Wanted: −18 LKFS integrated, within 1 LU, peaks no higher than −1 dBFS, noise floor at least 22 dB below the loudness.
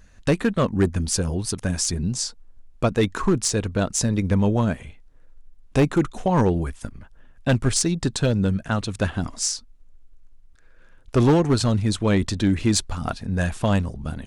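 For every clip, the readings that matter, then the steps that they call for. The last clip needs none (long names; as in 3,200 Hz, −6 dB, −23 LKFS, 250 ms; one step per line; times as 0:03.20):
share of clipped samples 1.1%; peaks flattened at −12.0 dBFS; integrated loudness −23.0 LKFS; sample peak −12.0 dBFS; target loudness −18.0 LKFS
→ clipped peaks rebuilt −12 dBFS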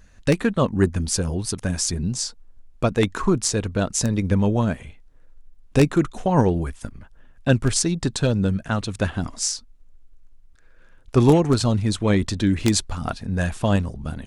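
share of clipped samples 0.0%; integrated loudness −22.0 LKFS; sample peak −3.0 dBFS; target loudness −18.0 LKFS
→ level +4 dB
brickwall limiter −1 dBFS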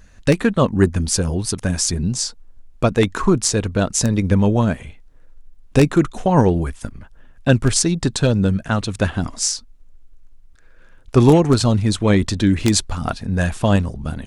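integrated loudness −18.5 LKFS; sample peak −1.0 dBFS; background noise floor −46 dBFS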